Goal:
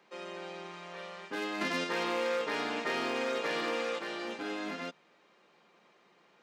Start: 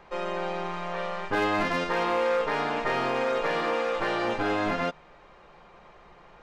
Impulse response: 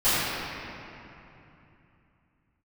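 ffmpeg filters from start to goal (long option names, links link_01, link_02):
-filter_complex "[0:a]highpass=frequency=220:width=0.5412,highpass=frequency=220:width=1.3066,equalizer=frequency=820:width=0.46:gain=-12,asettb=1/sr,asplit=3[link_01][link_02][link_03];[link_01]atrim=end=1.614[link_04];[link_02]atrim=start=1.61:end=3.99,asetpts=PTS-STARTPTS,afade=type=in:duration=0.004:curve=qsin,afade=type=out:start_time=2.376:duration=0.004:curve=qsin,acontrast=32[link_05];[link_03]atrim=start=3.986[link_06];[link_04][link_05]acrossfade=duration=0.004:curve1=hsin:curve2=qsin[link_07];[link_07][link_06]acrossfade=duration=0.004:curve1=qsin:curve2=hsin,volume=-2.5dB"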